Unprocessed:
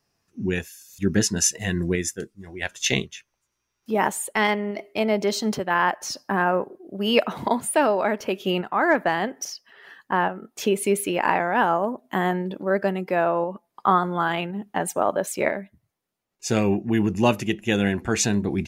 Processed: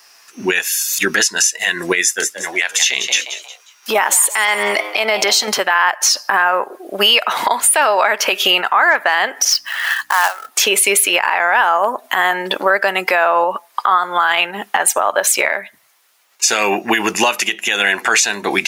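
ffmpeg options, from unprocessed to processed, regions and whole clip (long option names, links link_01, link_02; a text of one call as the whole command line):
ffmpeg -i in.wav -filter_complex "[0:a]asettb=1/sr,asplit=3[link_01][link_02][link_03];[link_01]atrim=end=2.024[link_04];[link_02]atrim=start=2.02:end=5.48,asetpts=PTS-STARTPTS,afade=type=in:duration=0.004:curve=qsin,afade=type=out:start_time=3.456:duration=0.004:curve=qsin,acompressor=threshold=-25dB:ratio=6:attack=3.2:release=140:knee=1:detection=peak,asplit=4[link_05][link_06][link_07][link_08];[link_06]adelay=179,afreqshift=110,volume=-16dB[link_09];[link_07]adelay=358,afreqshift=220,volume=-25.9dB[link_10];[link_08]adelay=537,afreqshift=330,volume=-35.8dB[link_11];[link_05][link_09][link_10][link_11]amix=inputs=4:normalize=0,atrim=end_sample=152586[link_12];[link_03]atrim=start=5.476[link_13];[link_04][link_12]acrossfade=duration=0.004:curve1=hsin:curve2=qsin[link_14];[link_14][link_13]acrossfade=duration=0.004:curve1=qsin:curve2=hsin,asettb=1/sr,asplit=3[link_15][link_16][link_17];[link_15]atrim=end=9.504[link_18];[link_16]atrim=start=9.5:end=10.49,asetpts=PTS-STARTPTS,afade=type=in:duration=0.004:curve=qsin,afade=type=out:start_time=0.986:duration=0.004:curve=qsin,highpass=frequency=630:width=0.5412,highpass=frequency=630:width=1.3066,acrusher=bits=3:mode=log:mix=0:aa=0.000001,aeval=exprs='val(0)+0.00112*(sin(2*PI*60*n/s)+sin(2*PI*2*60*n/s)/2+sin(2*PI*3*60*n/s)/3+sin(2*PI*4*60*n/s)/4+sin(2*PI*5*60*n/s)/5)':channel_layout=same[link_19];[link_17]atrim=start=10.486[link_20];[link_18][link_19]acrossfade=duration=0.004:curve1=hsin:curve2=qsin[link_21];[link_21][link_20]acrossfade=duration=0.004:curve1=qsin:curve2=hsin,highpass=1100,acompressor=threshold=-37dB:ratio=10,alimiter=level_in=31dB:limit=-1dB:release=50:level=0:latency=1,volume=-2dB" out.wav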